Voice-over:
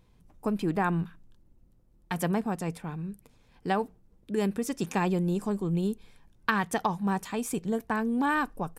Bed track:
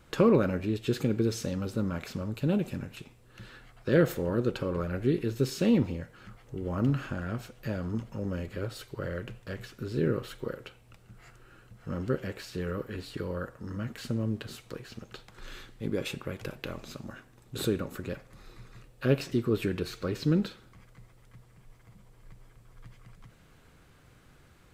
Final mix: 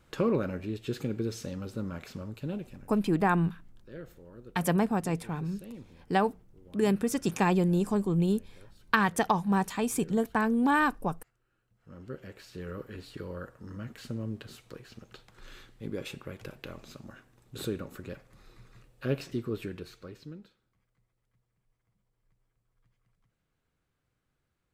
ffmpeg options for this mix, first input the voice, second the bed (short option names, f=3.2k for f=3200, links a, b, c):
-filter_complex "[0:a]adelay=2450,volume=2dB[a];[1:a]volume=11.5dB,afade=t=out:st=2.21:d=0.81:silence=0.149624,afade=t=in:st=11.68:d=1.14:silence=0.149624,afade=t=out:st=19.32:d=1.06:silence=0.141254[b];[a][b]amix=inputs=2:normalize=0"